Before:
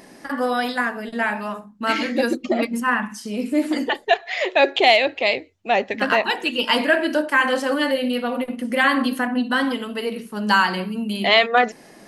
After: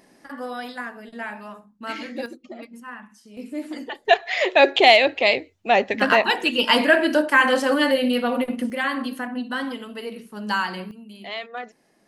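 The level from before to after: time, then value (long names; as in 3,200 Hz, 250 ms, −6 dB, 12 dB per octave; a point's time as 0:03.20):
−10 dB
from 0:02.26 −17.5 dB
from 0:03.37 −10.5 dB
from 0:04.05 +1.5 dB
from 0:08.70 −7 dB
from 0:10.91 −17 dB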